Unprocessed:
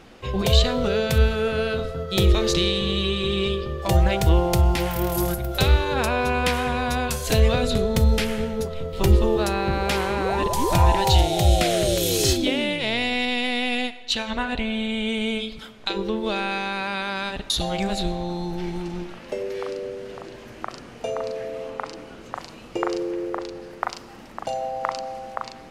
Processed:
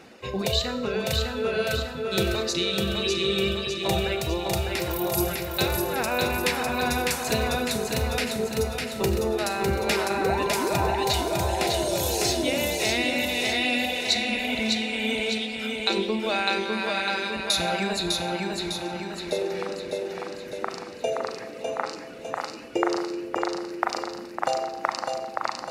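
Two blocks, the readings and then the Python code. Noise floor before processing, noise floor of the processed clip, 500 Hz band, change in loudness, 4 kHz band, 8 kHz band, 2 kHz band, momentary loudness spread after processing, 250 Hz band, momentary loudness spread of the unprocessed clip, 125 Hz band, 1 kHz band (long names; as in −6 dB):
−43 dBFS, −38 dBFS, −2.0 dB, −3.0 dB, −0.5 dB, 0.0 dB, +0.5 dB, 8 LU, −3.0 dB, 15 LU, −9.5 dB, −2.0 dB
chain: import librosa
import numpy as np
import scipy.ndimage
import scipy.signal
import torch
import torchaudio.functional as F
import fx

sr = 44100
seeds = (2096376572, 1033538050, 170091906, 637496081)

y = fx.notch(x, sr, hz=3200.0, q=7.8)
y = fx.spec_repair(y, sr, seeds[0], start_s=13.89, length_s=0.67, low_hz=430.0, high_hz=3600.0, source='both')
y = fx.peak_eq(y, sr, hz=1100.0, db=-4.0, octaves=0.45)
y = fx.dereverb_blind(y, sr, rt60_s=1.7)
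y = fx.rider(y, sr, range_db=3, speed_s=0.5)
y = scipy.signal.sosfilt(scipy.signal.butter(2, 70.0, 'highpass', fs=sr, output='sos'), y)
y = fx.low_shelf(y, sr, hz=140.0, db=-10.0)
y = fx.echo_feedback(y, sr, ms=603, feedback_pct=53, wet_db=-3.5)
y = fx.rev_schroeder(y, sr, rt60_s=0.79, comb_ms=29, drr_db=10.0)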